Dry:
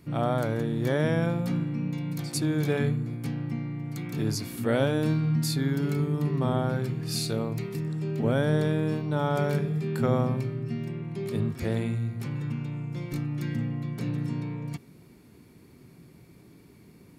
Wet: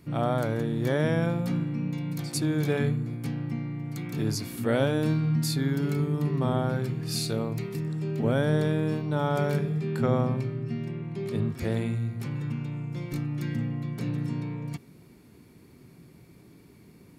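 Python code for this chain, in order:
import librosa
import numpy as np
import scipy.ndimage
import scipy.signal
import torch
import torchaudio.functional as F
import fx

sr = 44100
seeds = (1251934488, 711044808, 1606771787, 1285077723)

y = fx.high_shelf(x, sr, hz=10000.0, db=-9.5, at=(9.74, 11.54))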